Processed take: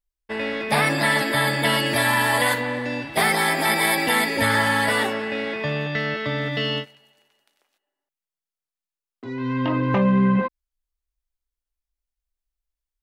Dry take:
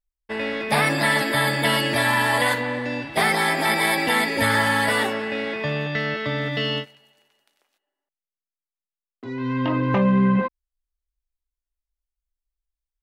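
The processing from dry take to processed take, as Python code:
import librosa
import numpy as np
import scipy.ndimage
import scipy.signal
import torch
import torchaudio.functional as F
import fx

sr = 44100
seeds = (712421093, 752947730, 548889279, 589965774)

y = fx.high_shelf(x, sr, hz=11000.0, db=9.0, at=(1.86, 4.37))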